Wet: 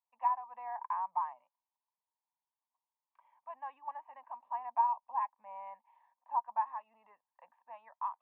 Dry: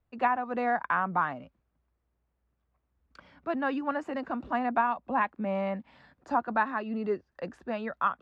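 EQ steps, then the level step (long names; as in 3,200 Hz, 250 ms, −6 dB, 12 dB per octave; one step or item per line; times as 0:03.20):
four-pole ladder band-pass 1,000 Hz, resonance 80%
phaser with its sweep stopped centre 1,400 Hz, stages 6
−3.0 dB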